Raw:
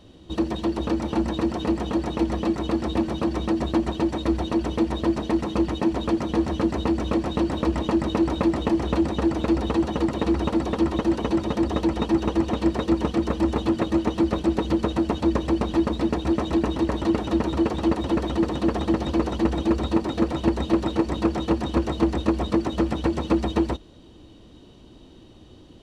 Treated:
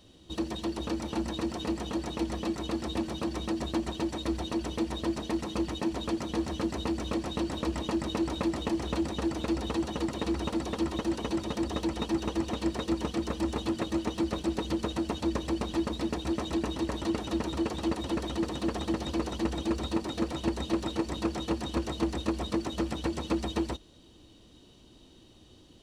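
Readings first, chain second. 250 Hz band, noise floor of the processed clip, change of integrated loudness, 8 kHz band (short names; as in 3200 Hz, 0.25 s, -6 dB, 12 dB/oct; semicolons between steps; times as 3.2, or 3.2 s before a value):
-8.5 dB, -56 dBFS, -8.0 dB, n/a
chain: high shelf 3200 Hz +11.5 dB; gain -8.5 dB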